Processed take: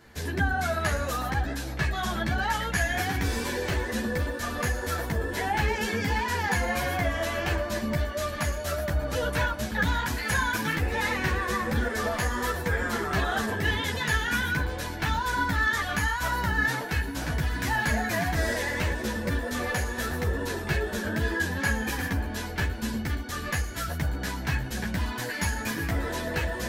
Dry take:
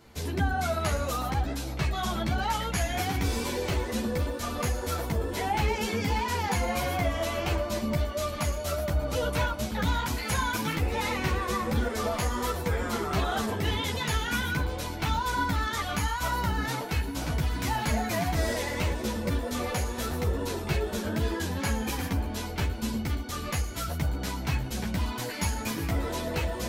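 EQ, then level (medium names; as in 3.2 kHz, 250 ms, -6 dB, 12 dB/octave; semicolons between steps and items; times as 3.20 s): peaking EQ 1.7 kHz +13.5 dB 0.23 oct; 0.0 dB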